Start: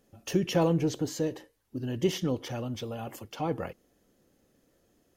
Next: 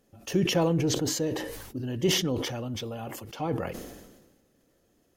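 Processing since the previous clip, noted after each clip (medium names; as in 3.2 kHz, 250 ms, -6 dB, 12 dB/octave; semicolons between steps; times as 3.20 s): decay stretcher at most 44 dB/s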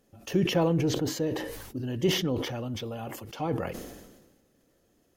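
dynamic bell 7.7 kHz, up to -8 dB, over -46 dBFS, Q 0.74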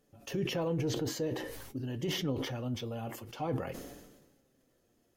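peak limiter -20.5 dBFS, peak gain reduction 6 dB; flange 0.49 Hz, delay 6.7 ms, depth 2 ms, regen +65%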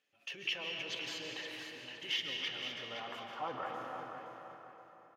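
band-pass sweep 2.6 kHz -> 1.2 kHz, 2.45–2.95 s; feedback delay 517 ms, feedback 31%, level -9 dB; reverberation RT60 3.1 s, pre-delay 100 ms, DRR 1 dB; trim +5.5 dB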